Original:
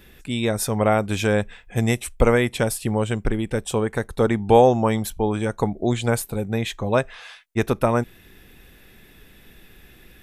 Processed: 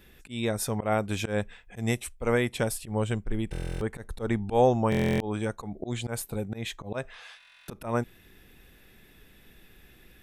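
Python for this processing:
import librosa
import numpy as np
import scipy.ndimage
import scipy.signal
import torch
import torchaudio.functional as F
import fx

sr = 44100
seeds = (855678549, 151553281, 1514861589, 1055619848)

y = fx.low_shelf(x, sr, hz=62.0, db=10.5, at=(2.73, 4.97))
y = fx.auto_swell(y, sr, attack_ms=122.0)
y = fx.buffer_glitch(y, sr, at_s=(3.51, 4.9, 7.38), block=1024, repeats=12)
y = y * librosa.db_to_amplitude(-6.0)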